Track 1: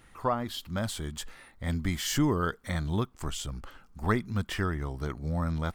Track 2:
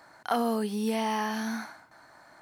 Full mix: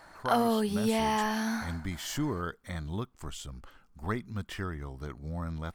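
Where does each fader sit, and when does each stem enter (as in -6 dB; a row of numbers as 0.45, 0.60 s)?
-6.0, +1.0 dB; 0.00, 0.00 s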